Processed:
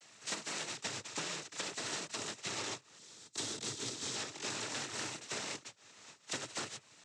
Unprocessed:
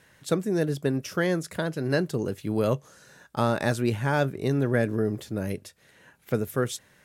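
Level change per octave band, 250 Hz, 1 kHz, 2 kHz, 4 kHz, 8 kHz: -22.0 dB, -12.5 dB, -10.0 dB, +1.5 dB, +3.5 dB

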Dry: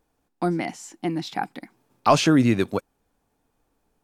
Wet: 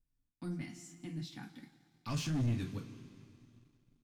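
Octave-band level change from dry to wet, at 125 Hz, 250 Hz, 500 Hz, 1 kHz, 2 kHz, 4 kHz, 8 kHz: -8.5 dB, -17.5 dB, -25.5 dB, -27.0 dB, -19.5 dB, -16.5 dB, -15.0 dB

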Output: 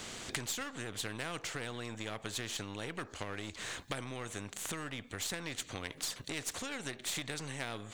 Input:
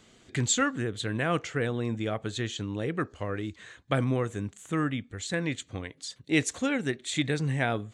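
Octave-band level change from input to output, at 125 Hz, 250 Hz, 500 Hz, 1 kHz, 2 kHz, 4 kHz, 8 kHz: -14.5 dB, -14.5 dB, -12.5 dB, -9.5 dB, -8.0 dB, -3.5 dB, -4.5 dB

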